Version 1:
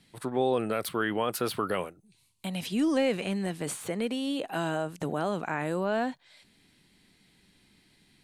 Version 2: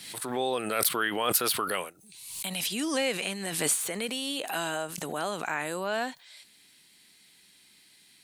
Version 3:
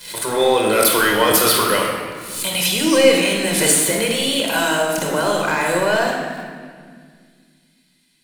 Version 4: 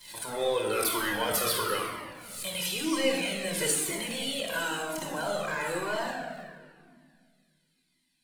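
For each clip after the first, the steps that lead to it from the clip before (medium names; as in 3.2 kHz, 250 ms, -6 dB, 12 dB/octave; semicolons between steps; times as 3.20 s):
tilt EQ +3.5 dB/octave; swell ahead of each attack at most 55 dB/s
waveshaping leveller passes 3; reverberation RT60 1.9 s, pre-delay 5 ms, DRR 0 dB; trim -2.5 dB
Shepard-style flanger falling 1 Hz; trim -8.5 dB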